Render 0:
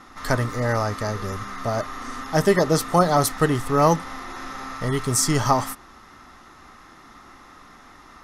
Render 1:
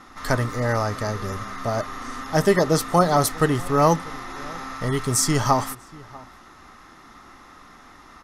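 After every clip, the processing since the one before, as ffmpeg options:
ffmpeg -i in.wav -filter_complex "[0:a]asplit=2[link_01][link_02];[link_02]adelay=641.4,volume=-22dB,highshelf=frequency=4000:gain=-14.4[link_03];[link_01][link_03]amix=inputs=2:normalize=0" out.wav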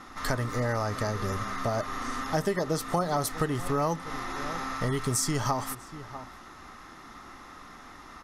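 ffmpeg -i in.wav -af "acompressor=threshold=-25dB:ratio=5" out.wav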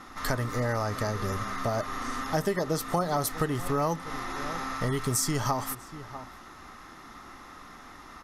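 ffmpeg -i in.wav -af "equalizer=frequency=13000:width_type=o:width=0.25:gain=6.5" out.wav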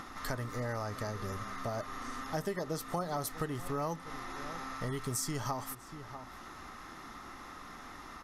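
ffmpeg -i in.wav -af "acompressor=mode=upward:threshold=-31dB:ratio=2.5,volume=-8dB" out.wav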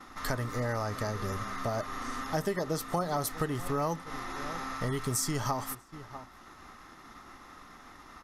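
ffmpeg -i in.wav -af "agate=range=-33dB:threshold=-41dB:ratio=3:detection=peak,volume=4.5dB" out.wav

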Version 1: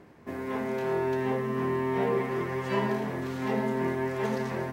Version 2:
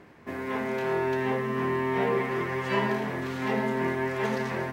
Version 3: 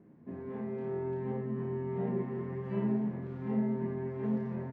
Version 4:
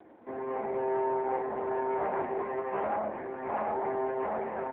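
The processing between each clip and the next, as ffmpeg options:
ffmpeg -i in.wav -af "equalizer=frequency=2200:width_type=o:width=2.2:gain=5.5" out.wav
ffmpeg -i in.wav -filter_complex "[0:a]bandpass=frequency=190:width_type=q:width=1.8:csg=0,asplit=2[link_01][link_02];[link_02]aecho=0:1:33|55:0.668|0.398[link_03];[link_01][link_03]amix=inputs=2:normalize=0" out.wav
ffmpeg -i in.wav -filter_complex "[0:a]asplit=2[link_01][link_02];[link_02]aeval=exprs='0.0944*sin(PI/2*4.47*val(0)/0.0944)':channel_layout=same,volume=-10.5dB[link_03];[link_01][link_03]amix=inputs=2:normalize=0,highpass=frequency=400:width=0.5412,highpass=frequency=400:width=1.3066,equalizer=frequency=420:width_type=q:width=4:gain=-7,equalizer=frequency=780:width_type=q:width=4:gain=3,equalizer=frequency=1300:width_type=q:width=4:gain=-5,lowpass=frequency=2200:width=0.5412,lowpass=frequency=2200:width=1.3066,volume=7.5dB" -ar 8000 -c:a libopencore_amrnb -b:a 5900 out.amr

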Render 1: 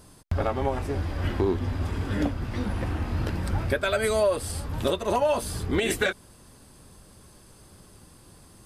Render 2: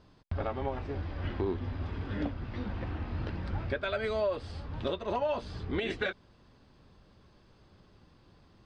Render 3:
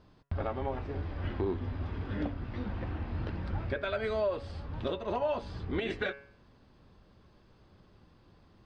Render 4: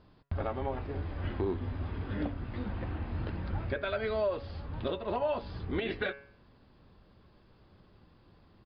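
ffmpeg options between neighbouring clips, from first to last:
ffmpeg -i in.wav -af "lowpass=frequency=4500:width=0.5412,lowpass=frequency=4500:width=1.3066,volume=-7.5dB" out.wav
ffmpeg -i in.wav -af "highshelf=frequency=3800:gain=-5.5,bandreject=frequency=139.9:width_type=h:width=4,bandreject=frequency=279.8:width_type=h:width=4,bandreject=frequency=419.7:width_type=h:width=4,bandreject=frequency=559.6:width_type=h:width=4,bandreject=frequency=699.5:width_type=h:width=4,bandreject=frequency=839.4:width_type=h:width=4,bandreject=frequency=979.3:width_type=h:width=4,bandreject=frequency=1119.2:width_type=h:width=4,bandreject=frequency=1259.1:width_type=h:width=4,bandreject=frequency=1399:width_type=h:width=4,bandreject=frequency=1538.9:width_type=h:width=4,bandreject=frequency=1678.8:width_type=h:width=4,bandreject=frequency=1818.7:width_type=h:width=4,bandreject=frequency=1958.6:width_type=h:width=4,bandreject=frequency=2098.5:width_type=h:width=4,bandreject=frequency=2238.4:width_type=h:width=4,bandreject=frequency=2378.3:width_type=h:width=4,bandreject=frequency=2518.2:width_type=h:width=4,bandreject=frequency=2658.1:width_type=h:width=4,bandreject=frequency=2798:width_type=h:width=4,bandreject=frequency=2937.9:width_type=h:width=4,bandreject=frequency=3077.8:width_type=h:width=4" out.wav
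ffmpeg -i in.wav -af "aresample=11025,aresample=44100" out.wav

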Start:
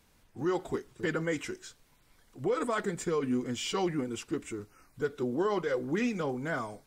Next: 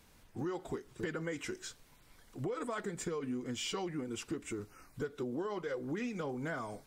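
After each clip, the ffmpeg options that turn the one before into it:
ffmpeg -i in.wav -af "acompressor=threshold=-38dB:ratio=6,volume=2.5dB" out.wav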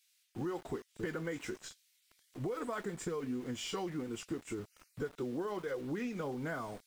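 ffmpeg -i in.wav -filter_complex "[0:a]acrossover=split=2300[link_01][link_02];[link_01]aeval=exprs='val(0)*gte(abs(val(0)),0.00299)':channel_layout=same[link_03];[link_02]flanger=delay=19.5:depth=7.3:speed=1.2[link_04];[link_03][link_04]amix=inputs=2:normalize=0" out.wav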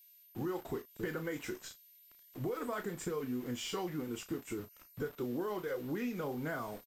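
ffmpeg -i in.wav -filter_complex "[0:a]asplit=2[link_01][link_02];[link_02]adelay=33,volume=-10.5dB[link_03];[link_01][link_03]amix=inputs=2:normalize=0,aeval=exprs='val(0)+0.00112*sin(2*PI*13000*n/s)':channel_layout=same" out.wav

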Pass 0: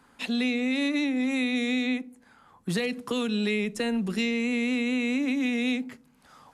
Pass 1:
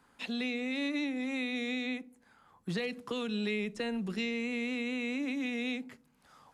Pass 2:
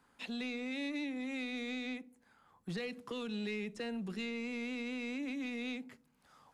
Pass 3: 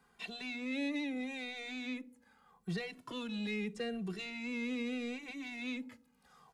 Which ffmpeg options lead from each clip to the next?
ffmpeg -i in.wav -filter_complex "[0:a]acrossover=split=6200[link_01][link_02];[link_02]acompressor=threshold=-56dB:ratio=4:attack=1:release=60[link_03];[link_01][link_03]amix=inputs=2:normalize=0,equalizer=frequency=250:width_type=o:width=0.26:gain=-3.5,volume=-6dB" out.wav
ffmpeg -i in.wav -af "asoftclip=type=tanh:threshold=-26.5dB,volume=-4dB" out.wav
ffmpeg -i in.wav -filter_complex "[0:a]asplit=2[link_01][link_02];[link_02]adelay=2.1,afreqshift=-0.79[link_03];[link_01][link_03]amix=inputs=2:normalize=1,volume=3.5dB" out.wav

